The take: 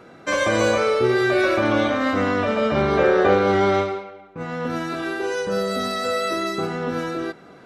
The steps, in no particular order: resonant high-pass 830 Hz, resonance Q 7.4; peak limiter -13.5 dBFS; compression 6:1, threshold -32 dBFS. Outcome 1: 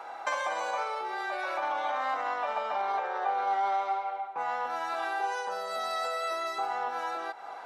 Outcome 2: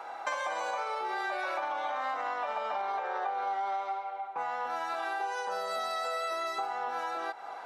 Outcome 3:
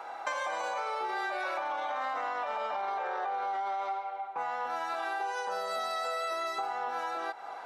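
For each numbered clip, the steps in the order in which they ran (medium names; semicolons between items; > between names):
peak limiter > compression > resonant high-pass; peak limiter > resonant high-pass > compression; resonant high-pass > peak limiter > compression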